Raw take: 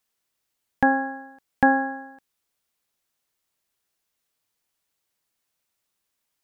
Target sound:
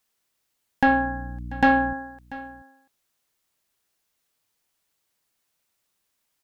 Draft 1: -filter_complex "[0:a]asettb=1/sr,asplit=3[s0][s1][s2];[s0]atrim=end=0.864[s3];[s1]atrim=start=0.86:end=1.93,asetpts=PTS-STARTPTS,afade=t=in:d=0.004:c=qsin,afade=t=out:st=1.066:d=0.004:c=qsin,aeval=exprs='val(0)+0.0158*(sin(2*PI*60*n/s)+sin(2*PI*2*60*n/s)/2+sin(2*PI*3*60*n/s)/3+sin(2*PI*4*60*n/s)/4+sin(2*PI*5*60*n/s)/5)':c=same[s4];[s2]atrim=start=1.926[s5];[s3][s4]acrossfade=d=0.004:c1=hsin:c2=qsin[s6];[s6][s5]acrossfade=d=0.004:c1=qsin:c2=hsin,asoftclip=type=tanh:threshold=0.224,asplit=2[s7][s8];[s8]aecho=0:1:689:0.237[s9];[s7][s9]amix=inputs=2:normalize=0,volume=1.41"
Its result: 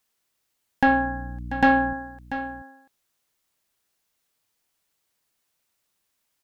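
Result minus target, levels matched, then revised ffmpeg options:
echo-to-direct +6.5 dB
-filter_complex "[0:a]asettb=1/sr,asplit=3[s0][s1][s2];[s0]atrim=end=0.864[s3];[s1]atrim=start=0.86:end=1.93,asetpts=PTS-STARTPTS,afade=t=in:d=0.004:c=qsin,afade=t=out:st=1.066:d=0.004:c=qsin,aeval=exprs='val(0)+0.0158*(sin(2*PI*60*n/s)+sin(2*PI*2*60*n/s)/2+sin(2*PI*3*60*n/s)/3+sin(2*PI*4*60*n/s)/4+sin(2*PI*5*60*n/s)/5)':c=same[s4];[s2]atrim=start=1.926[s5];[s3][s4]acrossfade=d=0.004:c1=hsin:c2=qsin[s6];[s6][s5]acrossfade=d=0.004:c1=qsin:c2=hsin,asoftclip=type=tanh:threshold=0.224,asplit=2[s7][s8];[s8]aecho=0:1:689:0.112[s9];[s7][s9]amix=inputs=2:normalize=0,volume=1.41"

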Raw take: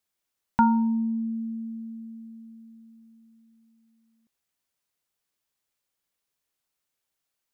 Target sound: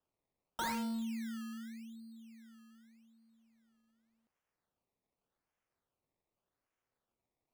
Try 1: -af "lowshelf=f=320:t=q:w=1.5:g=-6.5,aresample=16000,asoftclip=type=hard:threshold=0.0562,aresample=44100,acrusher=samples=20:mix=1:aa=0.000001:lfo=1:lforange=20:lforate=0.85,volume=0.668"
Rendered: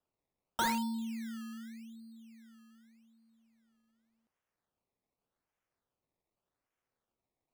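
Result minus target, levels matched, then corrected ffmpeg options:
hard clipper: distortion -4 dB
-af "lowshelf=f=320:t=q:w=1.5:g=-6.5,aresample=16000,asoftclip=type=hard:threshold=0.0266,aresample=44100,acrusher=samples=20:mix=1:aa=0.000001:lfo=1:lforange=20:lforate=0.85,volume=0.668"

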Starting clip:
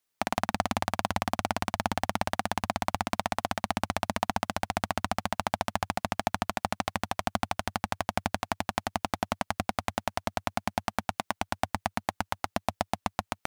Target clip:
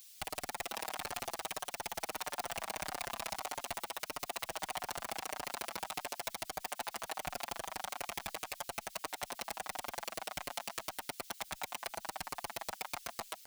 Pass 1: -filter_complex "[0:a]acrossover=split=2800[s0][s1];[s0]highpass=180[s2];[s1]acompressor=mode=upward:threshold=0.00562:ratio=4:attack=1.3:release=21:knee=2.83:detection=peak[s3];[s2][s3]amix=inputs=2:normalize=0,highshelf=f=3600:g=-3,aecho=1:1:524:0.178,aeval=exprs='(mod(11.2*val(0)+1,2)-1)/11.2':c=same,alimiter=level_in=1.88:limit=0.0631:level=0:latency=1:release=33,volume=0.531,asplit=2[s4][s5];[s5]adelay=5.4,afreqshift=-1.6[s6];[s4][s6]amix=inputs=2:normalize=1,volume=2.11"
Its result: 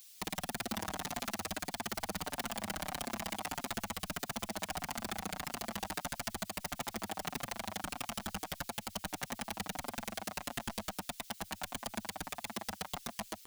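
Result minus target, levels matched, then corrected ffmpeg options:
250 Hz band +10.0 dB
-filter_complex "[0:a]acrossover=split=2800[s0][s1];[s0]highpass=710[s2];[s1]acompressor=mode=upward:threshold=0.00562:ratio=4:attack=1.3:release=21:knee=2.83:detection=peak[s3];[s2][s3]amix=inputs=2:normalize=0,highshelf=f=3600:g=-3,aecho=1:1:524:0.178,aeval=exprs='(mod(11.2*val(0)+1,2)-1)/11.2':c=same,alimiter=level_in=1.88:limit=0.0631:level=0:latency=1:release=33,volume=0.531,asplit=2[s4][s5];[s5]adelay=5.4,afreqshift=-1.6[s6];[s4][s6]amix=inputs=2:normalize=1,volume=2.11"

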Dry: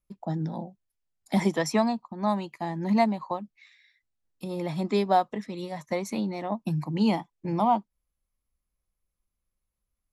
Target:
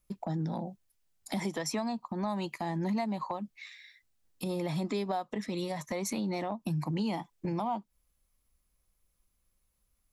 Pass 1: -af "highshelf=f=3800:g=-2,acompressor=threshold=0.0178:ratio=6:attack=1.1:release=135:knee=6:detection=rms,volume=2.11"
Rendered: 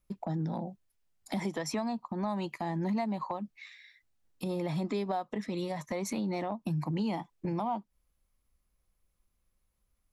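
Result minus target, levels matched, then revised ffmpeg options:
8 kHz band -3.5 dB
-af "highshelf=f=3800:g=4.5,acompressor=threshold=0.0178:ratio=6:attack=1.1:release=135:knee=6:detection=rms,volume=2.11"

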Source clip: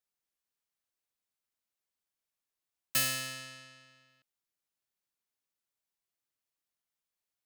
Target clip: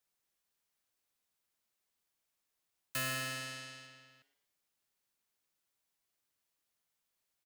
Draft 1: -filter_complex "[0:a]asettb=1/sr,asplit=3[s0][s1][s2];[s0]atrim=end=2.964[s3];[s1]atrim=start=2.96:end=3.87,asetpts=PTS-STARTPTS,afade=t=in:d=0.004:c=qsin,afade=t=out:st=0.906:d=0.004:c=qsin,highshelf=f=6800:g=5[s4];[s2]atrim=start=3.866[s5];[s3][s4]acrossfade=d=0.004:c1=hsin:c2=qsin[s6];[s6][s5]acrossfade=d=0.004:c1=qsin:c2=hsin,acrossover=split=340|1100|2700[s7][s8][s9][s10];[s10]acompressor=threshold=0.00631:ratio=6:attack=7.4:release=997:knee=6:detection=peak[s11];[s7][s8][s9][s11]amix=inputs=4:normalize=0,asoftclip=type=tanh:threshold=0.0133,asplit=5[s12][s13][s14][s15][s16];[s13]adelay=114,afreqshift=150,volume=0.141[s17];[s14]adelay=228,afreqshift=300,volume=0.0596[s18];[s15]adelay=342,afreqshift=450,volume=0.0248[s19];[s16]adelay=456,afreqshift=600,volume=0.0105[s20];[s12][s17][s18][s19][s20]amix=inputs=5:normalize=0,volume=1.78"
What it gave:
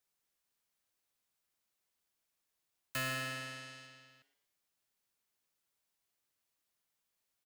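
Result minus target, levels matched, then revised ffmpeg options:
compression: peak gain reduction +6.5 dB
-filter_complex "[0:a]asettb=1/sr,asplit=3[s0][s1][s2];[s0]atrim=end=2.964[s3];[s1]atrim=start=2.96:end=3.87,asetpts=PTS-STARTPTS,afade=t=in:d=0.004:c=qsin,afade=t=out:st=0.906:d=0.004:c=qsin,highshelf=f=6800:g=5[s4];[s2]atrim=start=3.866[s5];[s3][s4]acrossfade=d=0.004:c1=hsin:c2=qsin[s6];[s6][s5]acrossfade=d=0.004:c1=qsin:c2=hsin,acrossover=split=340|1100|2700[s7][s8][s9][s10];[s10]acompressor=threshold=0.015:ratio=6:attack=7.4:release=997:knee=6:detection=peak[s11];[s7][s8][s9][s11]amix=inputs=4:normalize=0,asoftclip=type=tanh:threshold=0.0133,asplit=5[s12][s13][s14][s15][s16];[s13]adelay=114,afreqshift=150,volume=0.141[s17];[s14]adelay=228,afreqshift=300,volume=0.0596[s18];[s15]adelay=342,afreqshift=450,volume=0.0248[s19];[s16]adelay=456,afreqshift=600,volume=0.0105[s20];[s12][s17][s18][s19][s20]amix=inputs=5:normalize=0,volume=1.78"

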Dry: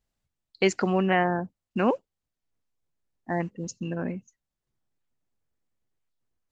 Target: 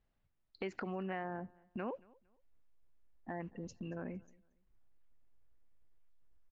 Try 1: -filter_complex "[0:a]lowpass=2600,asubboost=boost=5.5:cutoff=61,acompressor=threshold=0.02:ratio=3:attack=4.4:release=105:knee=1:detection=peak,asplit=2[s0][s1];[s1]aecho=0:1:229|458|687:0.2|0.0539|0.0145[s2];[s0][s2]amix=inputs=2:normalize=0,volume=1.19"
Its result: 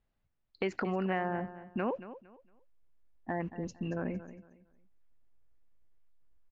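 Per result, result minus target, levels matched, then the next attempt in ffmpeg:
compression: peak gain reduction -7.5 dB; echo-to-direct +11 dB
-filter_complex "[0:a]lowpass=2600,asubboost=boost=5.5:cutoff=61,acompressor=threshold=0.00531:ratio=3:attack=4.4:release=105:knee=1:detection=peak,asplit=2[s0][s1];[s1]aecho=0:1:229|458|687:0.2|0.0539|0.0145[s2];[s0][s2]amix=inputs=2:normalize=0,volume=1.19"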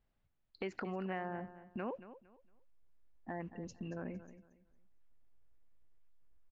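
echo-to-direct +11 dB
-filter_complex "[0:a]lowpass=2600,asubboost=boost=5.5:cutoff=61,acompressor=threshold=0.00531:ratio=3:attack=4.4:release=105:knee=1:detection=peak,asplit=2[s0][s1];[s1]aecho=0:1:229|458:0.0562|0.0152[s2];[s0][s2]amix=inputs=2:normalize=0,volume=1.19"

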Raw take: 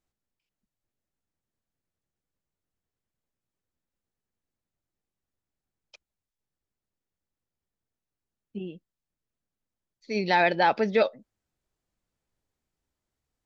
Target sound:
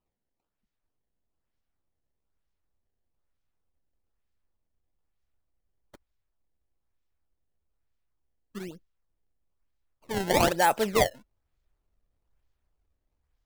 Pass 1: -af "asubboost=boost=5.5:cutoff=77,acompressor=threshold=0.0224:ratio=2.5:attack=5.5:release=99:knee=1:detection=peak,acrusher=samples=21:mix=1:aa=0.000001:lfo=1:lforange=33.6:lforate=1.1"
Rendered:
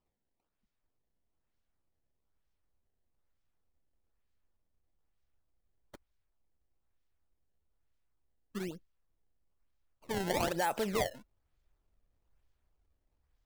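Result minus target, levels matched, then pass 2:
compression: peak gain reduction +10.5 dB
-af "asubboost=boost=5.5:cutoff=77,acrusher=samples=21:mix=1:aa=0.000001:lfo=1:lforange=33.6:lforate=1.1"

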